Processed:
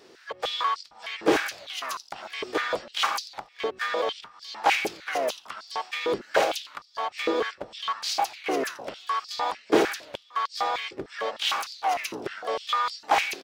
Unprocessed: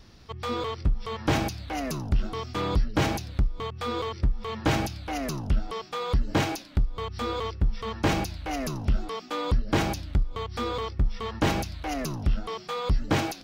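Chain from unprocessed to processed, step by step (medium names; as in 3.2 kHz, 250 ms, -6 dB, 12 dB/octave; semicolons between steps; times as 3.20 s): harmony voices -12 st -9 dB, -7 st -8 dB, +7 st -11 dB; step-sequenced high-pass 6.6 Hz 400–4600 Hz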